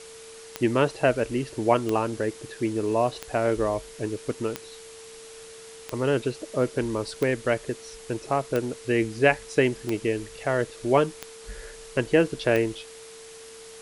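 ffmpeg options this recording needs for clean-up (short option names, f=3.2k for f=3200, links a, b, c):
-af "adeclick=t=4,bandreject=f=450:w=30,afwtdn=0.0056"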